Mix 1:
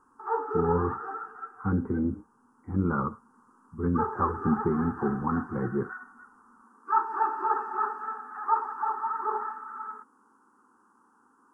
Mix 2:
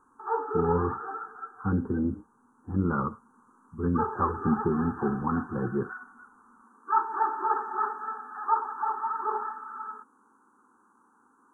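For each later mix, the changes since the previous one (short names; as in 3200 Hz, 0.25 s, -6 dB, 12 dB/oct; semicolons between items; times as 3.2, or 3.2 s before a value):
master: add brick-wall FIR band-stop 1800–5700 Hz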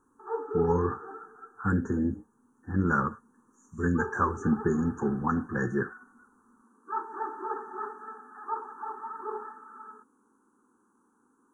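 speech: remove steep low-pass 1300 Hz 48 dB/oct; background: add band shelf 980 Hz -8.5 dB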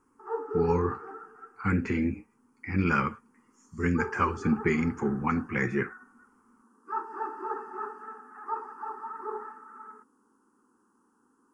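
master: remove brick-wall FIR band-stop 1800–5700 Hz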